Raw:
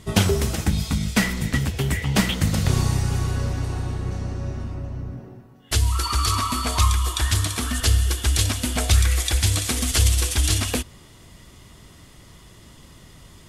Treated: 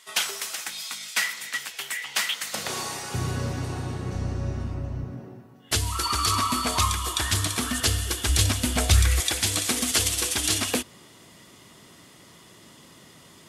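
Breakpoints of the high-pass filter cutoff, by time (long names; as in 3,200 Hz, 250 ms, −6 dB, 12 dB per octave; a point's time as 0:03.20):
1,300 Hz
from 0:02.54 520 Hz
from 0:03.14 120 Hz
from 0:04.14 44 Hz
from 0:05.04 120 Hz
from 0:08.29 56 Hz
from 0:09.20 190 Hz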